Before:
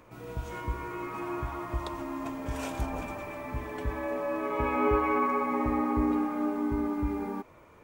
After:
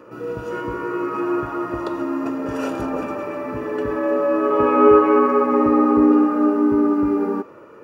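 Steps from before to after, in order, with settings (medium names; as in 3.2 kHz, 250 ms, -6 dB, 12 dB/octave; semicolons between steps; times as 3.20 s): high-pass 630 Hz 6 dB/octave; reverberation RT60 0.65 s, pre-delay 3 ms, DRR 17.5 dB; trim +3.5 dB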